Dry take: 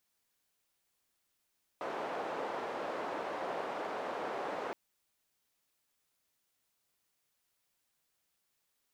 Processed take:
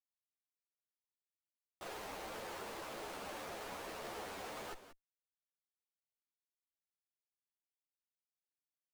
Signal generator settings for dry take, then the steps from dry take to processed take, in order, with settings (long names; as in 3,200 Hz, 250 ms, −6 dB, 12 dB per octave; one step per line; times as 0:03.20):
band-limited noise 470–700 Hz, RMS −38.5 dBFS 2.92 s
comparator with hysteresis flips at −55.5 dBFS
single-tap delay 183 ms −12.5 dB
string-ensemble chorus